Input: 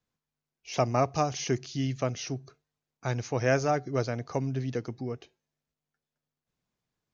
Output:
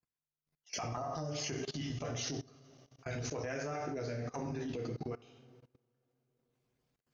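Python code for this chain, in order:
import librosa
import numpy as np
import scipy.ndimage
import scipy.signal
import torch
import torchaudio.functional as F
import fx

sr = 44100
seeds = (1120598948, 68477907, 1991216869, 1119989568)

y = fx.spec_dropout(x, sr, seeds[0], share_pct=28)
y = fx.rev_double_slope(y, sr, seeds[1], early_s=0.56, late_s=3.5, knee_db=-27, drr_db=-1.0)
y = fx.transient(y, sr, attack_db=-8, sustain_db=-4)
y = fx.level_steps(y, sr, step_db=21)
y = F.gain(torch.from_numpy(y), 3.5).numpy()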